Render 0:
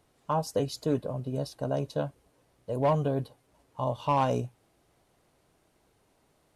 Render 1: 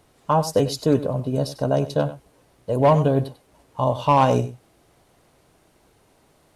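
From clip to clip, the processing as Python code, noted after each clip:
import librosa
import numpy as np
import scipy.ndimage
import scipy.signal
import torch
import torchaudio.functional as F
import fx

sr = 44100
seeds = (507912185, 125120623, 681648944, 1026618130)

y = x + 10.0 ** (-14.5 / 20.0) * np.pad(x, (int(96 * sr / 1000.0), 0))[:len(x)]
y = y * librosa.db_to_amplitude(9.0)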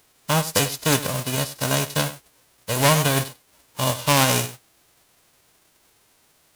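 y = fx.envelope_flatten(x, sr, power=0.3)
y = y * librosa.db_to_amplitude(-1.5)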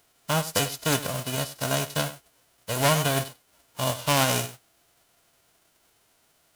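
y = fx.small_body(x, sr, hz=(680.0, 1400.0, 3000.0), ring_ms=45, db=7)
y = y * librosa.db_to_amplitude(-5.0)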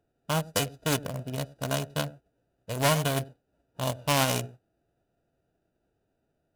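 y = fx.wiener(x, sr, points=41)
y = y * librosa.db_to_amplitude(-1.5)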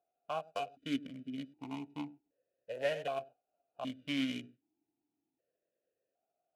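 y = fx.vowel_held(x, sr, hz=1.3)
y = y * librosa.db_to_amplitude(1.0)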